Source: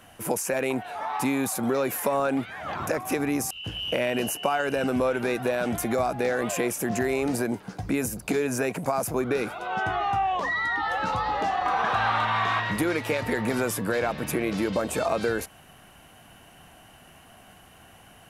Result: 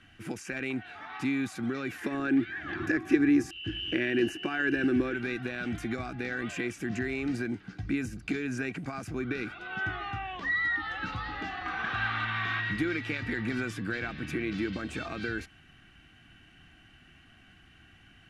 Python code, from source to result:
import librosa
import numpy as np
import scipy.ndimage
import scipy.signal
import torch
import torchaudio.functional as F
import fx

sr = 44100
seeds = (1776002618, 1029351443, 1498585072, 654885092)

y = fx.small_body(x, sr, hz=(340.0, 1700.0), ring_ms=45, db=15, at=(2.01, 5.14))
y = scipy.signal.sosfilt(scipy.signal.butter(2, 3700.0, 'lowpass', fs=sr, output='sos'), y)
y = fx.band_shelf(y, sr, hz=670.0, db=-14.5, octaves=1.7)
y = y + 0.31 * np.pad(y, (int(2.6 * sr / 1000.0), 0))[:len(y)]
y = y * librosa.db_to_amplitude(-2.5)